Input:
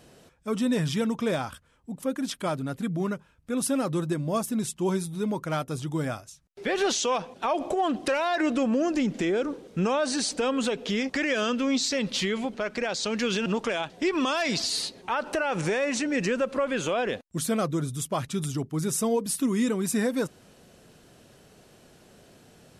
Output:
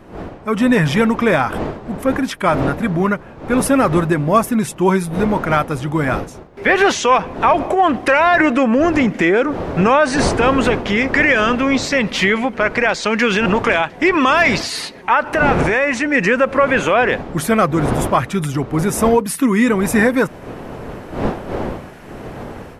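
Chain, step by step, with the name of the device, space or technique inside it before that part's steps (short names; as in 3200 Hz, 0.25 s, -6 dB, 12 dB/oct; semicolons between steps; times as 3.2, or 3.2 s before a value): graphic EQ 1000/2000/4000/8000 Hz +5/+9/-6/-6 dB; smartphone video outdoors (wind noise 550 Hz -36 dBFS; AGC gain up to 12.5 dB; AAC 128 kbps 44100 Hz)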